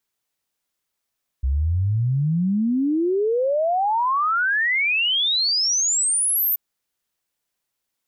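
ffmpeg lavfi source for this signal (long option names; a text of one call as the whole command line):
ffmpeg -f lavfi -i "aevalsrc='0.133*clip(min(t,5.13-t)/0.01,0,1)*sin(2*PI*63*5.13/log(14000/63)*(exp(log(14000/63)*t/5.13)-1))':duration=5.13:sample_rate=44100" out.wav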